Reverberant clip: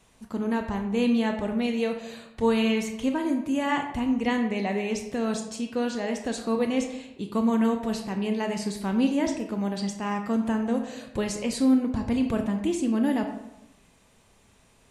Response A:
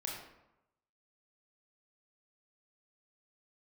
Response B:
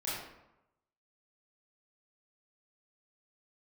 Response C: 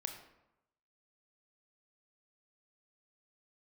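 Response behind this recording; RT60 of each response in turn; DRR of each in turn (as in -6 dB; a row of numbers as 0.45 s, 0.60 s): C; 0.90 s, 0.90 s, 0.90 s; -2.5 dB, -9.5 dB, 4.5 dB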